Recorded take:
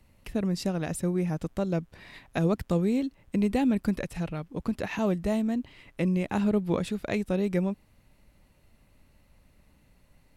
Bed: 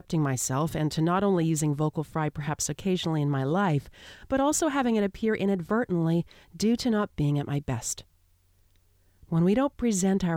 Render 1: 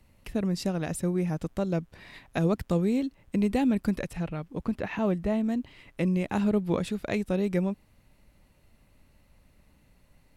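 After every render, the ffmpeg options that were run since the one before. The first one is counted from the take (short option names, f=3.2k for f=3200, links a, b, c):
-filter_complex "[0:a]asettb=1/sr,asplit=3[a][b][c];[a]atrim=end=4.134[d];[b]atrim=start=4.13:end=5.44,asetpts=PTS-STARTPTS,afade=t=in:d=0.004:c=qsin,afade=t=out:st=1.306:d=0.004:c=qsin,acrossover=split=3300[e][f];[f]acompressor=threshold=-59dB:ratio=4:attack=1:release=60[g];[e][g]amix=inputs=2:normalize=0[h];[c]atrim=start=5.436[i];[d][h]acrossfade=d=0.004:c1=hsin:c2=qsin[j];[j][i]acrossfade=d=0.004:c1=qsin:c2=hsin"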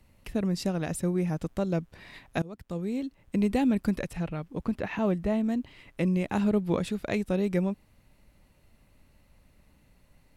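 -filter_complex "[0:a]asplit=2[a][b];[a]atrim=end=2.42,asetpts=PTS-STARTPTS,afade=t=out:st=2.416:d=0.004:c=hsin:silence=0.0630957[c];[b]atrim=start=2.42,asetpts=PTS-STARTPTS,afade=t=in:d=0.99:silence=0.0630957[d];[c][d]concat=n=2:v=0:a=1"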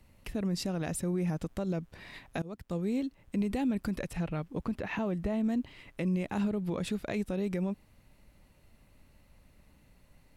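-af "alimiter=limit=-23.5dB:level=0:latency=1:release=62"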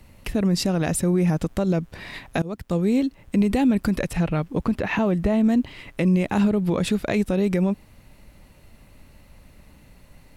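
-af "volume=11dB"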